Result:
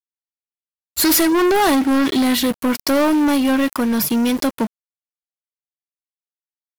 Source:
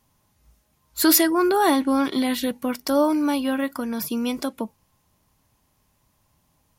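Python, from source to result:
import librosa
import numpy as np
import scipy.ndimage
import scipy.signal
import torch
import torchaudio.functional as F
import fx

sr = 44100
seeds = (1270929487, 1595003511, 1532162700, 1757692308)

y = fx.leveller(x, sr, passes=5)
y = np.where(np.abs(y) >= 10.0 ** (-25.5 / 20.0), y, 0.0)
y = y * librosa.db_to_amplitude(-7.0)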